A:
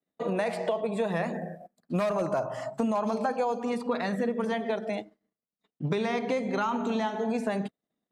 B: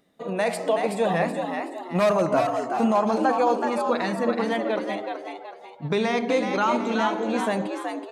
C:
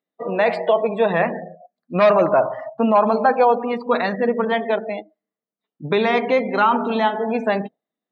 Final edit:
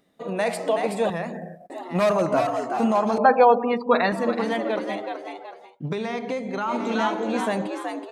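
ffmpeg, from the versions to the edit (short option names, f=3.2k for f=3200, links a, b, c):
-filter_complex "[0:a]asplit=2[a][b];[1:a]asplit=4[c][d][e][f];[c]atrim=end=1.102[g];[a]atrim=start=1.098:end=1.702[h];[d]atrim=start=1.698:end=3.182[i];[2:a]atrim=start=3.178:end=4.122[j];[e]atrim=start=4.118:end=5.81[k];[b]atrim=start=5.57:end=6.84[l];[f]atrim=start=6.6[m];[g][h]acrossfade=d=0.004:c1=hsin:c2=hsin[n];[n][i]acrossfade=d=0.004:c1=hsin:c2=hsin[o];[o][j]acrossfade=d=0.004:c1=hsin:c2=hsin[p];[p][k]acrossfade=d=0.004:c1=hsin:c2=hsin[q];[q][l]acrossfade=d=0.24:c1=tri:c2=tri[r];[r][m]acrossfade=d=0.24:c1=tri:c2=tri"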